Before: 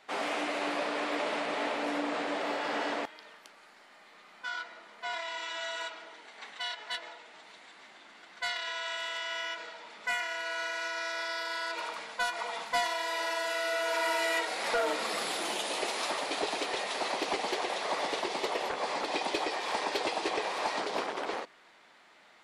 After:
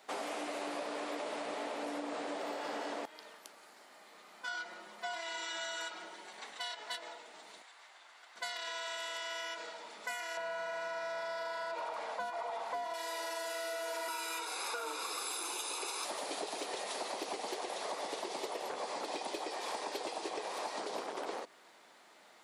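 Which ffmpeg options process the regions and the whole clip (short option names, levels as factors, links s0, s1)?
-filter_complex "[0:a]asettb=1/sr,asplit=3[s0][s1][s2];[s0]atrim=end=4.474[s3];[s1]atrim=start=4.47:end=6.4,asetpts=PTS-STARTPTS,afade=t=in:d=0.004:c=qsin,afade=t=out:st=1.926:d=0.004:c=qsin,lowshelf=f=170:g=7,aecho=1:1:5.5:0.71,atrim=end_sample=85113[s4];[s2]atrim=start=6.396[s5];[s3][s4]acrossfade=d=0.004:c1=hsin:c2=qsin[s6];[s6][s5]acrossfade=d=0.004:c1=qsin:c2=hsin,asettb=1/sr,asplit=3[s7][s8][s9];[s7]atrim=end=7.624[s10];[s8]atrim=start=7.62:end=8.36,asetpts=PTS-STARTPTS,afade=t=in:d=0.004:c=qsin,afade=t=out:st=0.736:d=0.004:c=qsin,highpass=860,highshelf=f=3800:g=-6[s11];[s9]atrim=start=8.356[s12];[s10][s11]acrossfade=d=0.004:c1=hsin:c2=qsin[s13];[s13][s12]acrossfade=d=0.004:c1=qsin:c2=hsin,asettb=1/sr,asplit=3[s14][s15][s16];[s14]atrim=end=10.374[s17];[s15]atrim=start=10.37:end=12.94,asetpts=PTS-STARTPTS,afade=t=in:d=0.004:c=qsin,afade=t=out:st=2.566:d=0.004:c=qsin,equalizer=f=700:w=1.3:g=7.5,acompressor=threshold=0.0158:ratio=1.5:attack=3.2:release=140:knee=1:detection=peak,asplit=2[s18][s19];[s19]highpass=f=720:p=1,volume=3.55,asoftclip=type=tanh:threshold=0.0944[s20];[s18][s20]amix=inputs=2:normalize=0,lowpass=f=1600:p=1,volume=0.501[s21];[s16]atrim=start=12.936[s22];[s17][s21]acrossfade=d=0.004:c1=hsin:c2=qsin[s23];[s23][s22]acrossfade=d=0.004:c1=qsin:c2=hsin,asettb=1/sr,asplit=3[s24][s25][s26];[s24]atrim=end=14.084[s27];[s25]atrim=start=14.08:end=16.04,asetpts=PTS-STARTPTS,afade=t=in:d=0.004:c=qsin,afade=t=out:st=1.956:d=0.004:c=qsin,highpass=f=360:w=0.5412,highpass=f=360:w=1.3066,aecho=1:1:0.8:0.75,atrim=end_sample=86436[s28];[s26]atrim=start=16.036[s29];[s27][s28]acrossfade=d=0.004:c1=hsin:c2=qsin[s30];[s30][s29]acrossfade=d=0.004:c1=qsin:c2=hsin,highpass=f=690:p=1,equalizer=f=2200:w=0.36:g=-14,acompressor=threshold=0.00447:ratio=6,volume=3.35"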